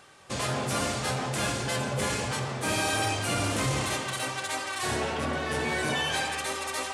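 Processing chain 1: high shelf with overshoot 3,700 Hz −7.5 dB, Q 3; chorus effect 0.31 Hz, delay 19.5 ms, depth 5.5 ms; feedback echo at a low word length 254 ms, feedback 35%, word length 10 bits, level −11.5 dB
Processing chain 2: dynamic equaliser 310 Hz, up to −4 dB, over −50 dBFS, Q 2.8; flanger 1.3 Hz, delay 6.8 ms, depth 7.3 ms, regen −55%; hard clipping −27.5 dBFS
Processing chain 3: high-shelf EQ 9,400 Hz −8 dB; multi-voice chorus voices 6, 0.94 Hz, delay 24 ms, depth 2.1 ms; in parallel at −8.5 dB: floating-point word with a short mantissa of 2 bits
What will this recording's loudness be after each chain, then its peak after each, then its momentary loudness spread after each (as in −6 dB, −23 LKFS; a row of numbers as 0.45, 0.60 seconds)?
−30.5, −33.5, −29.5 LKFS; −18.0, −27.5, −16.0 dBFS; 5, 4, 4 LU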